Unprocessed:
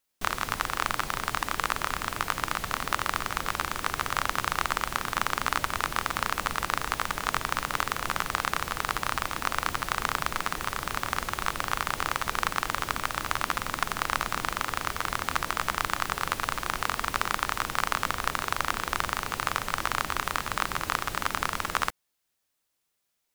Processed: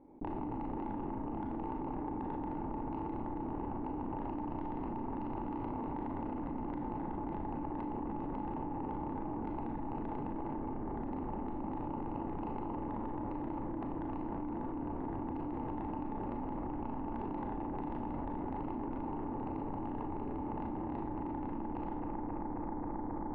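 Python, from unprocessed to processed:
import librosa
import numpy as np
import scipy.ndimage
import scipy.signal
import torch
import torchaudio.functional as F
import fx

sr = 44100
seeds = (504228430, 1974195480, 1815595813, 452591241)

p1 = fx.formant_cascade(x, sr, vowel='u')
p2 = fx.high_shelf(p1, sr, hz=2200.0, db=-9.5)
p3 = 10.0 ** (-40.0 / 20.0) * np.tanh(p2 / 10.0 ** (-40.0 / 20.0))
p4 = p3 + fx.echo_bbd(p3, sr, ms=268, stages=4096, feedback_pct=79, wet_db=-6.5, dry=0)
p5 = fx.rev_schroeder(p4, sr, rt60_s=0.57, comb_ms=27, drr_db=1.5)
p6 = fx.env_flatten(p5, sr, amount_pct=100)
y = p6 * 10.0 ** (3.5 / 20.0)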